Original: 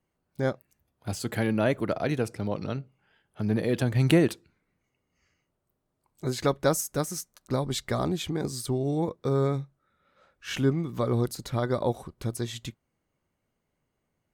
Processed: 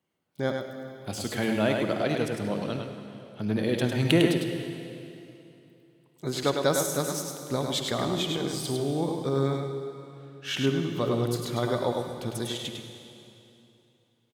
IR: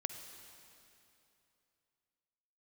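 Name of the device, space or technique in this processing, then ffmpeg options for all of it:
PA in a hall: -filter_complex "[0:a]highpass=130,equalizer=frequency=3300:width_type=o:width=0.56:gain=7,aecho=1:1:103:0.596[link_01];[1:a]atrim=start_sample=2205[link_02];[link_01][link_02]afir=irnorm=-1:irlink=0"

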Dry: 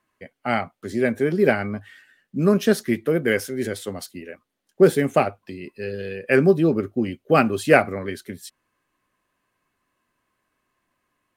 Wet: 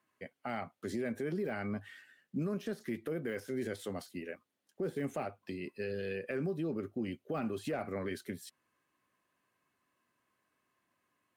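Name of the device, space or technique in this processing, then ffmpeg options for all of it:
podcast mastering chain: -af "highpass=93,deesser=0.85,acompressor=threshold=-26dB:ratio=3,alimiter=limit=-22.5dB:level=0:latency=1:release=23,volume=-5dB" -ar 44100 -c:a libmp3lame -b:a 128k

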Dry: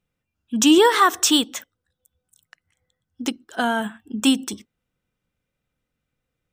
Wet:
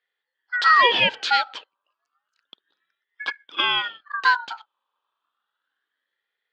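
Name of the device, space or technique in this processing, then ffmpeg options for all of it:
voice changer toy: -af "aeval=exprs='val(0)*sin(2*PI*1500*n/s+1500*0.3/0.31*sin(2*PI*0.31*n/s))':channel_layout=same,highpass=420,equalizer=frequency=670:width_type=q:width=4:gain=-5,equalizer=frequency=2200:width_type=q:width=4:gain=-9,equalizer=frequency=3300:width_type=q:width=4:gain=9,lowpass=frequency=3700:width=0.5412,lowpass=frequency=3700:width=1.3066,volume=3dB"

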